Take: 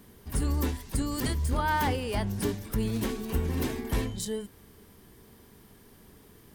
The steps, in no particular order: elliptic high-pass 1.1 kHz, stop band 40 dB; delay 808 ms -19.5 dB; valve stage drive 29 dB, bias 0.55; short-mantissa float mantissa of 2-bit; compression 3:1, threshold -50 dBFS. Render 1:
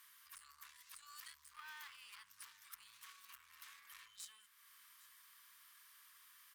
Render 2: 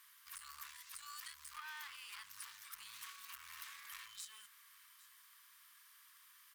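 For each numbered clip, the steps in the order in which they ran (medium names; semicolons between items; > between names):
valve stage > compression > elliptic high-pass > short-mantissa float > delay; short-mantissa float > valve stage > elliptic high-pass > compression > delay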